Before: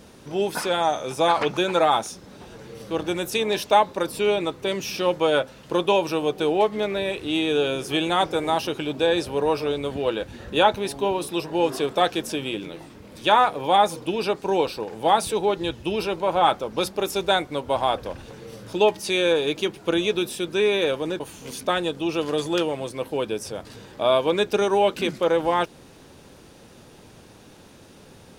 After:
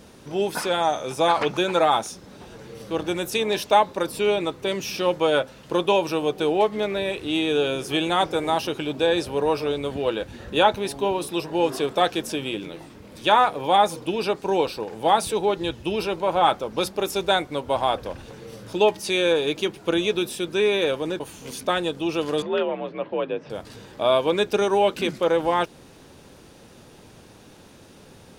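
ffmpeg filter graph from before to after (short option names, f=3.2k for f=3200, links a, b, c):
-filter_complex "[0:a]asettb=1/sr,asplit=3[a][b][c];[a]atrim=end=22.424[d];[b]atrim=start=22.42:end=23.5,asetpts=PTS-STARTPTS,afade=t=in:d=0.004:c=qsin,afade=t=out:st=1.076:d=0.004:c=qsin,afreqshift=52,lowpass=f=2.9k:w=0.5412,lowpass=f=2.9k:w=1.3066[e];[c]atrim=start=23.496[f];[d][e]acrossfade=d=0.004:c1=hsin:c2=qsin[g];[g][f]acrossfade=d=0.004:c1=qsin:c2=hsin"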